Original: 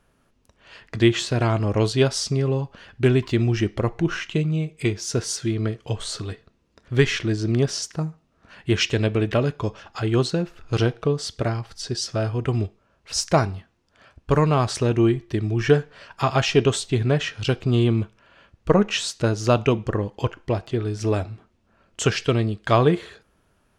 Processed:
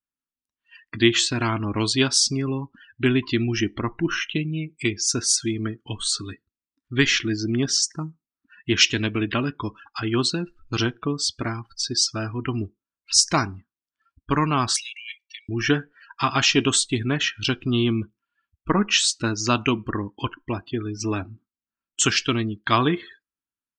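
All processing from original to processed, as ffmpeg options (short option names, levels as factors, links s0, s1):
-filter_complex "[0:a]asettb=1/sr,asplit=3[s0][s1][s2];[s0]atrim=end=14.764[s3];[s1]atrim=start=14.76:end=15.49,asetpts=PTS-STARTPTS,afade=t=in:d=0.004:c=qsin,afade=t=out:st=0.726:d=0.004:c=qsin,asuperpass=centerf=5100:order=20:qfactor=0.54,aecho=1:1:1.8:0.69,atrim=end_sample=32193[s4];[s2]atrim=start=15.486[s5];[s3][s4]acrossfade=d=0.004:c1=hsin:c2=qsin[s6];[s6][s5]acrossfade=d=0.004:c1=qsin:c2=hsin,firequalizer=gain_entry='entry(150,0);entry(280,10);entry(490,-7);entry(980,7)':delay=0.05:min_phase=1,afftdn=nr=35:nf=-32,highshelf=f=2900:g=9,volume=0.501"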